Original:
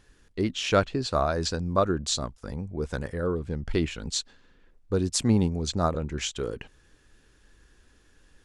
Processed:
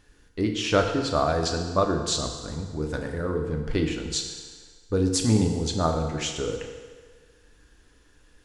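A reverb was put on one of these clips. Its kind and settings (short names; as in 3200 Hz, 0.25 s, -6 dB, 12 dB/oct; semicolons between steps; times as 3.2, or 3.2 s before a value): FDN reverb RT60 1.6 s, low-frequency decay 0.7×, high-frequency decay 0.9×, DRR 2.5 dB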